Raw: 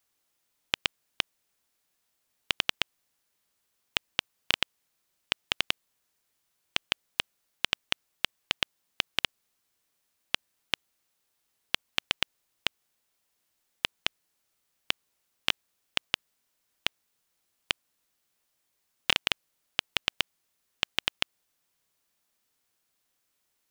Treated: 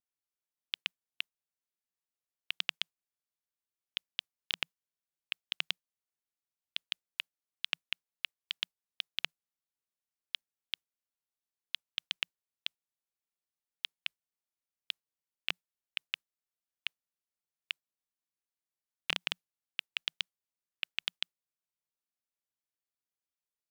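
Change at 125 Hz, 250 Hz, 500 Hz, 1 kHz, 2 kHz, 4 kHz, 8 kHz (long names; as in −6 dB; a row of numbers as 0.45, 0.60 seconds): −14.5, −15.0, −15.0, −13.5, −8.0, −7.0, −13.0 decibels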